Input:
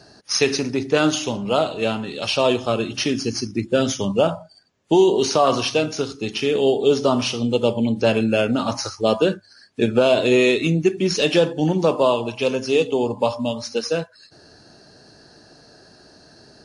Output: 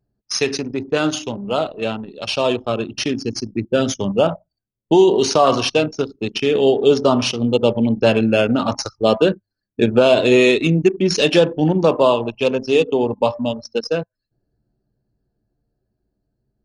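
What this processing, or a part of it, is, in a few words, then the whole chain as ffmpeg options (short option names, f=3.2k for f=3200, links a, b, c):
voice memo with heavy noise removal: -af "anlmdn=251,dynaudnorm=f=830:g=9:m=11.5dB,volume=-1dB"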